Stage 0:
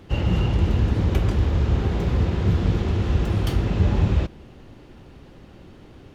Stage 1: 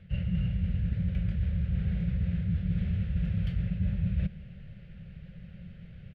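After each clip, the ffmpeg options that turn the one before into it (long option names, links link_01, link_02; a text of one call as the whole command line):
ffmpeg -i in.wav -af "firequalizer=gain_entry='entry(120,0);entry(180,8);entry(270,-28);entry(550,-8);entry(930,-28);entry(1500,-6);entry(2200,-3);entry(6300,-24)':delay=0.05:min_phase=1,areverse,acompressor=threshold=-26dB:ratio=6,areverse" out.wav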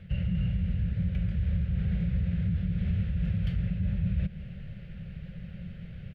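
ffmpeg -i in.wav -af "alimiter=level_in=2dB:limit=-24dB:level=0:latency=1:release=151,volume=-2dB,volume=5dB" out.wav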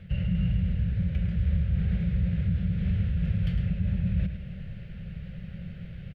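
ffmpeg -i in.wav -af "aecho=1:1:105:0.398,volume=1.5dB" out.wav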